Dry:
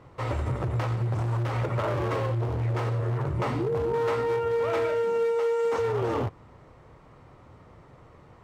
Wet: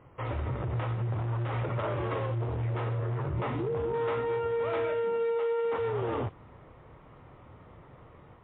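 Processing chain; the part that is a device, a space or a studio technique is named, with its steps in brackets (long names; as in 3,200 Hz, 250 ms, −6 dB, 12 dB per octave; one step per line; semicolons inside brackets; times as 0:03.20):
low-bitrate web radio (automatic gain control gain up to 4 dB; brickwall limiter −20 dBFS, peak gain reduction 5.5 dB; level −4 dB; MP3 24 kbit/s 8,000 Hz)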